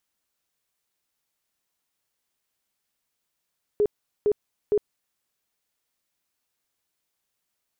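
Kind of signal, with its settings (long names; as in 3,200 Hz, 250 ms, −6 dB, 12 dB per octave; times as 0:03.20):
tone bursts 416 Hz, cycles 24, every 0.46 s, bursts 3, −17 dBFS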